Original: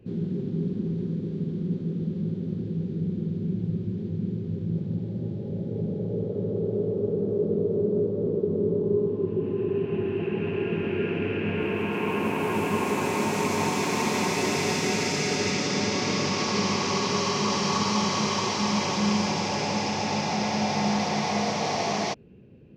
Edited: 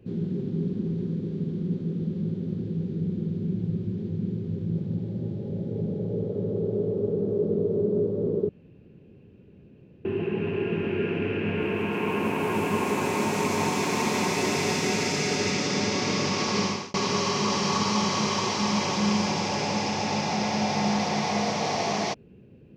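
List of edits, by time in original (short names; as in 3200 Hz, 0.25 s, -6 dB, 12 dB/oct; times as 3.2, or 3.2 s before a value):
8.49–10.05 room tone
16.63–16.94 fade out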